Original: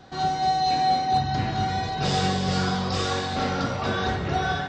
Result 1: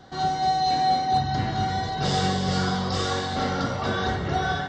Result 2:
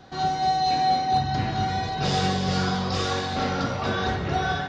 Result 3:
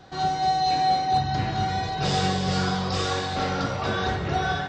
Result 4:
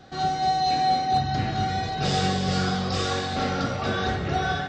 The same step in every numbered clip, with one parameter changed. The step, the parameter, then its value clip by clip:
band-stop, frequency: 2.5 kHz, 7.8 kHz, 240 Hz, 970 Hz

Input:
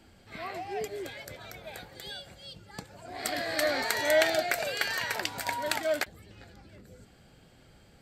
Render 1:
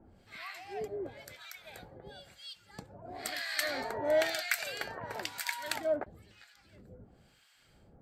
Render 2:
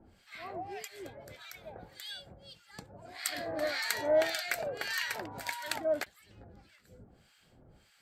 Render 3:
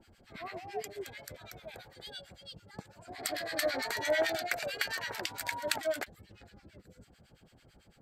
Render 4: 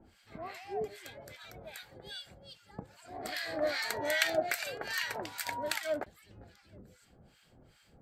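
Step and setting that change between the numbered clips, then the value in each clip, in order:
harmonic tremolo, rate: 1 Hz, 1.7 Hz, 9 Hz, 2.5 Hz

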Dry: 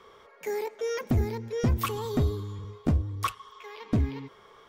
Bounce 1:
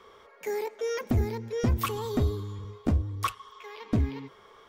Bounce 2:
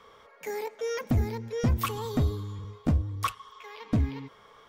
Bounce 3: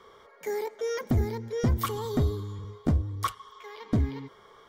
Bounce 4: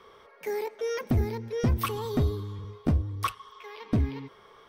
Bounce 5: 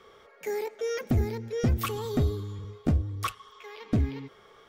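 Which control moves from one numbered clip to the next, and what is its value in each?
band-stop, frequency: 150 Hz, 380 Hz, 2.6 kHz, 7 kHz, 1 kHz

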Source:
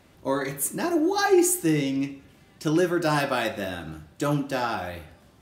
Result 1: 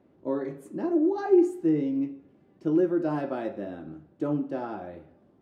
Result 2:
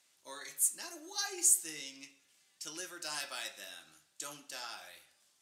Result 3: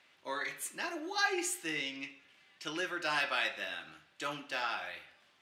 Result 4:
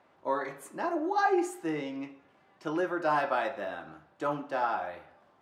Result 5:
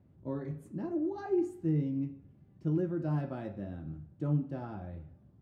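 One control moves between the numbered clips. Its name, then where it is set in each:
band-pass filter, frequency: 330 Hz, 7.5 kHz, 2.6 kHz, 920 Hz, 120 Hz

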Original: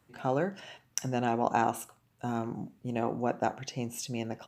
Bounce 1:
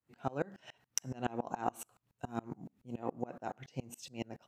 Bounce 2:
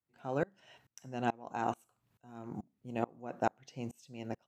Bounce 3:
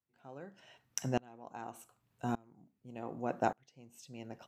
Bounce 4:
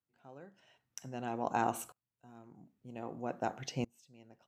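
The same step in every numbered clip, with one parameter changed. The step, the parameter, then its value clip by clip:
sawtooth tremolo in dB, rate: 7.1 Hz, 2.3 Hz, 0.85 Hz, 0.52 Hz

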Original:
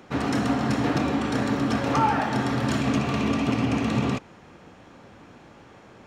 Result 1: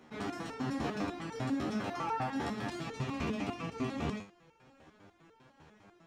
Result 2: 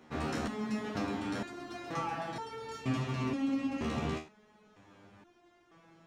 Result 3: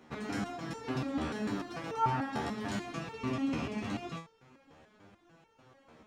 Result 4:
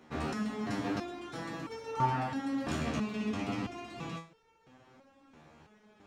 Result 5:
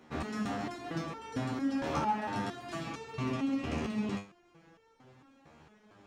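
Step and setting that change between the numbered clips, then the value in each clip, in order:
resonator arpeggio, rate: 10 Hz, 2.1 Hz, 6.8 Hz, 3 Hz, 4.4 Hz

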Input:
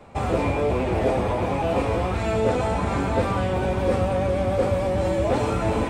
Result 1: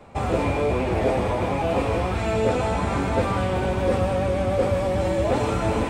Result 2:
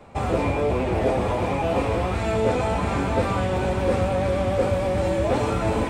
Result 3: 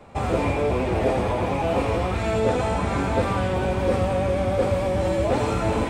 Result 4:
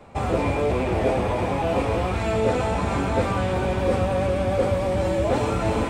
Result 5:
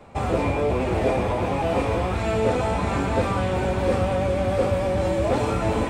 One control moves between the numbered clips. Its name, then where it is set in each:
feedback echo behind a high-pass, time: 154 ms, 1050 ms, 82 ms, 299 ms, 649 ms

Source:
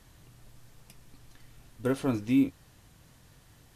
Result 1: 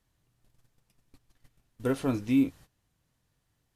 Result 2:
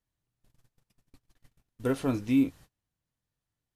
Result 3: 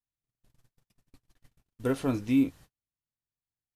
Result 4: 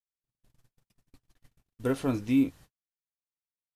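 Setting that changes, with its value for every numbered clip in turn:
gate, range: -18 dB, -30 dB, -43 dB, -59 dB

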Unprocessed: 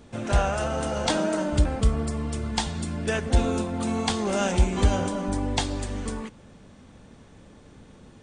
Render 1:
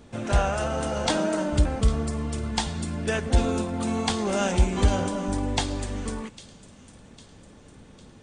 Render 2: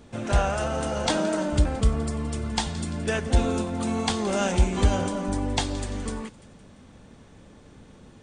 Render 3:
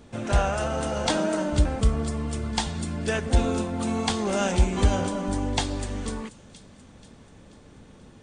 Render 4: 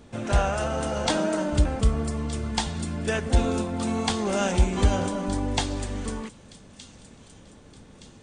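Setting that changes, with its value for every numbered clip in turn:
feedback echo behind a high-pass, time: 803 ms, 171 ms, 484 ms, 1219 ms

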